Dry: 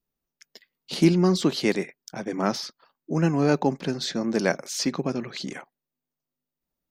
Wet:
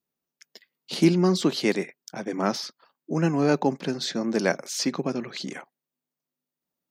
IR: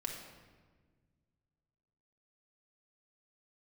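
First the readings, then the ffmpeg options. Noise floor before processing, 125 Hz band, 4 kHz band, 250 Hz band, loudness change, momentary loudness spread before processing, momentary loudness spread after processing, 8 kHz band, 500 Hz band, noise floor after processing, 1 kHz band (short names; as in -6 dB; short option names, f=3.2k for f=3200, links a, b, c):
under -85 dBFS, -2.0 dB, 0.0 dB, -0.5 dB, -0.5 dB, 14 LU, 14 LU, 0.0 dB, 0.0 dB, under -85 dBFS, 0.0 dB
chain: -af "highpass=140"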